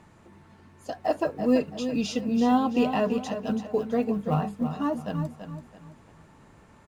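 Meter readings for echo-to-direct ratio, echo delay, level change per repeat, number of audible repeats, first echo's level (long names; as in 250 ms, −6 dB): −8.5 dB, 333 ms, −9.5 dB, 3, −9.0 dB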